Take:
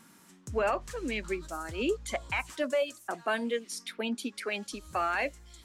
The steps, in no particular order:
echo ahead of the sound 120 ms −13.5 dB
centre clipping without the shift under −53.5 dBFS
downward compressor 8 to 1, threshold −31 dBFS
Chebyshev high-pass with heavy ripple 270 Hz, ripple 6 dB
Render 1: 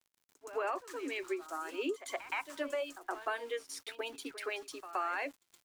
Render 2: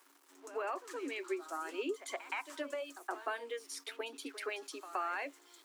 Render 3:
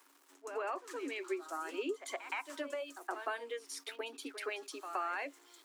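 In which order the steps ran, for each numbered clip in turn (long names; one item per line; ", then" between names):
Chebyshev high-pass with heavy ripple, then centre clipping without the shift, then downward compressor, then echo ahead of the sound
downward compressor, then echo ahead of the sound, then centre clipping without the shift, then Chebyshev high-pass with heavy ripple
centre clipping without the shift, then echo ahead of the sound, then downward compressor, then Chebyshev high-pass with heavy ripple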